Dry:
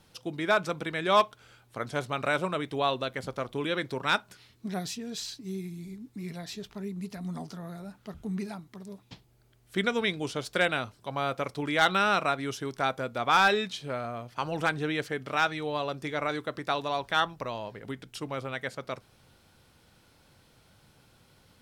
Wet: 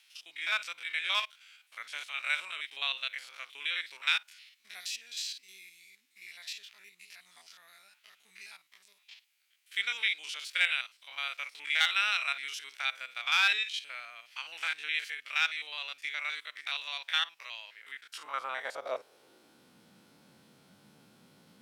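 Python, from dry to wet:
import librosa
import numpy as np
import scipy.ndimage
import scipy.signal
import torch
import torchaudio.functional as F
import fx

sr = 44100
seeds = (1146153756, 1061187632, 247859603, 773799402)

y = fx.spec_steps(x, sr, hold_ms=50)
y = fx.filter_sweep_highpass(y, sr, from_hz=2400.0, to_hz=200.0, start_s=17.77, end_s=19.77, q=2.4)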